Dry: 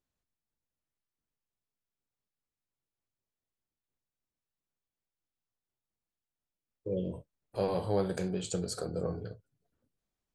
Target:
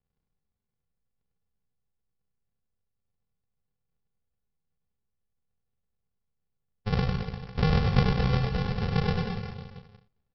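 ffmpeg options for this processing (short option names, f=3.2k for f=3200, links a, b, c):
-af "aresample=11025,acrusher=samples=35:mix=1:aa=0.000001,aresample=44100,aecho=1:1:100|215|347.2|499.3|674.2:0.631|0.398|0.251|0.158|0.1,volume=6.5dB"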